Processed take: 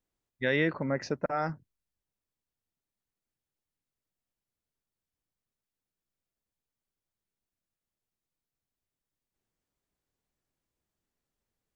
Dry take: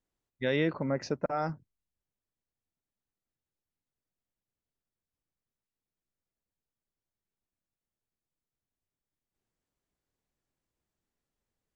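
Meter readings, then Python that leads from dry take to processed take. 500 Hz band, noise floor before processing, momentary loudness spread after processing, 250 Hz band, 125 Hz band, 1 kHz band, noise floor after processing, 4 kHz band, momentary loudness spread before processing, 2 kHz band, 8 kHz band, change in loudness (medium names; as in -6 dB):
0.0 dB, under -85 dBFS, 8 LU, 0.0 dB, 0.0 dB, +1.0 dB, under -85 dBFS, +0.5 dB, 7 LU, +5.5 dB, no reading, +1.0 dB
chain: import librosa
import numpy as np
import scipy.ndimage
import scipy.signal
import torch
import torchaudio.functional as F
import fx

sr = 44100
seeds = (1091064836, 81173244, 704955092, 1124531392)

y = fx.dynamic_eq(x, sr, hz=1800.0, q=2.3, threshold_db=-50.0, ratio=4.0, max_db=7)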